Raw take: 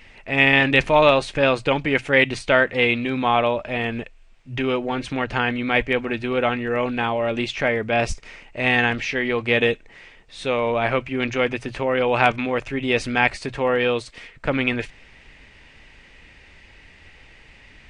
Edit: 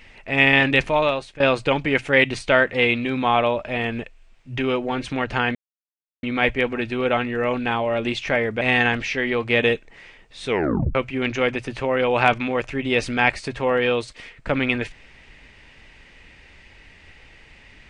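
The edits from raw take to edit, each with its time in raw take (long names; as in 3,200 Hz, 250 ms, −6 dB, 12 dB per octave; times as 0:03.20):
0:00.65–0:01.40: fade out, to −16.5 dB
0:05.55: splice in silence 0.68 s
0:07.93–0:08.59: remove
0:10.45: tape stop 0.48 s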